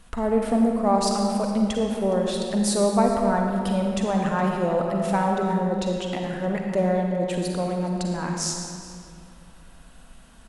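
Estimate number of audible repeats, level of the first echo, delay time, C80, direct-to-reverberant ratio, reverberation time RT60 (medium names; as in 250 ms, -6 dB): 1, -19.0 dB, 415 ms, 2.5 dB, 1.0 dB, 2.3 s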